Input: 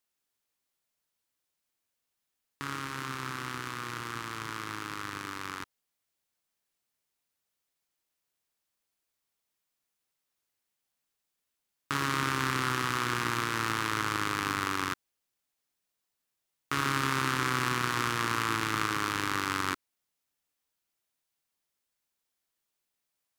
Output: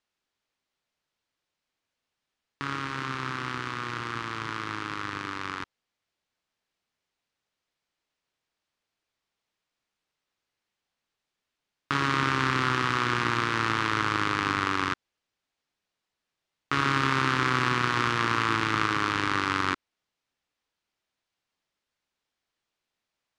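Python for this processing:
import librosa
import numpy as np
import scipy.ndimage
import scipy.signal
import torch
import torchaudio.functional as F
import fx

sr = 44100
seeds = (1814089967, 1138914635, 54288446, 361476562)

y = scipy.signal.sosfilt(scipy.signal.butter(2, 4600.0, 'lowpass', fs=sr, output='sos'), x)
y = y * librosa.db_to_amplitude(4.5)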